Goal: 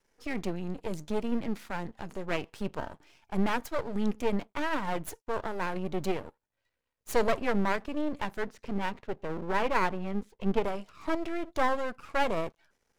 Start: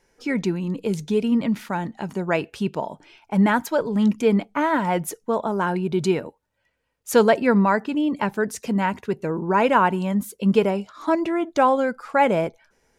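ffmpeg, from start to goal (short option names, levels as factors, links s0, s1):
-filter_complex "[0:a]asettb=1/sr,asplit=3[s0][s1][s2];[s0]atrim=end=8.424[s3];[s1]atrim=start=8.42:end=10.64,asetpts=PTS-STARTPTS,afade=t=in:d=0.004:c=qsin,afade=t=out:st=2.216:d=0.004:c=qsin,lowpass=2900[s4];[s2]atrim=start=10.636[s5];[s3][s4]acrossfade=d=0.004:c1=hsin:c2=qsin[s6];[s6][s5]acrossfade=d=0.004:c1=qsin:c2=hsin,aeval=exprs='max(val(0),0)':c=same,volume=0.531"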